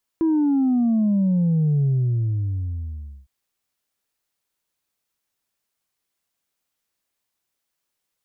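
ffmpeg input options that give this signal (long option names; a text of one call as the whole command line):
ffmpeg -f lavfi -i "aevalsrc='0.15*clip((3.06-t)/1.43,0,1)*tanh(1.12*sin(2*PI*330*3.06/log(65/330)*(exp(log(65/330)*t/3.06)-1)))/tanh(1.12)':duration=3.06:sample_rate=44100" out.wav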